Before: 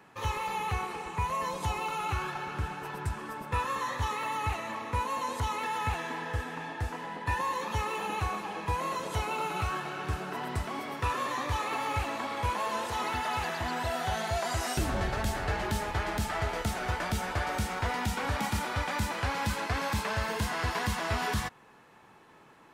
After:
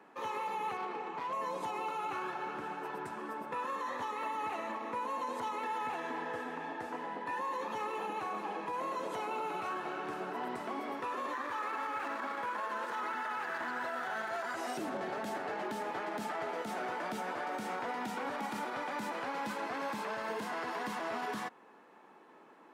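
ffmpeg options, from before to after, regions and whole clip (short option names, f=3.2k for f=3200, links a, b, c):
-filter_complex "[0:a]asettb=1/sr,asplit=3[a][b][c];[a]atrim=end=0.774[d];[b]atrim=start=0.77:end=1.33,asetpts=PTS-STARTPTS,afade=t=in:d=0.004:c=qsin,afade=t=out:st=0.556:d=0.004:c=qsin,lowpass=4.3k,asoftclip=type=hard:threshold=-33dB[e];[c]atrim=start=1.326[f];[d][e]acrossfade=d=0.004:c1=hsin:c2=qsin[g];[g][f]acrossfade=d=0.004:c1=qsin:c2=hsin,asettb=1/sr,asplit=3[h][i][j];[h]atrim=end=11.334[k];[i]atrim=start=11.33:end=14.56,asetpts=PTS-STARTPTS,afade=t=in:d=0.004:c=qsin,afade=t=out:st=3.226:d=0.004:c=qsin,equalizer=f=1.5k:w=1.8:g=12,bandreject=f=720:w=12,aeval=exprs='sgn(val(0))*max(abs(val(0))-0.00794,0)':c=same[l];[j]atrim=start=14.556[m];[k][l]acrossfade=d=0.004:c1=hsin:c2=qsin[n];[n][m]acrossfade=d=0.004:c1=qsin:c2=hsin,highpass=f=230:w=0.5412,highpass=f=230:w=1.3066,highshelf=f=2.1k:g=-12,alimiter=level_in=6dB:limit=-24dB:level=0:latency=1:release=59,volume=-6dB,volume=1dB"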